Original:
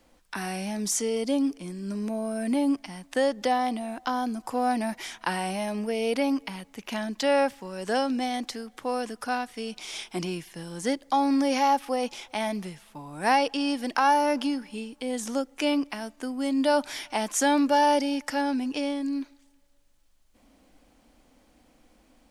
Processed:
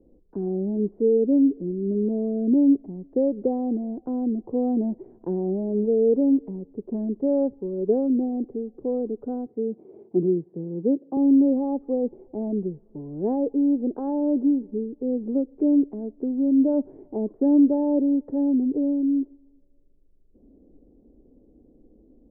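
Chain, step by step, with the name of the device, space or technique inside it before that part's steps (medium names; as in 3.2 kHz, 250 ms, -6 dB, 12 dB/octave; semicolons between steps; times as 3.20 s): 9.46–11.17 s: high-pass 110 Hz 24 dB/octave; under water (low-pass 450 Hz 24 dB/octave; peaking EQ 400 Hz +11 dB 0.44 oct); trim +5.5 dB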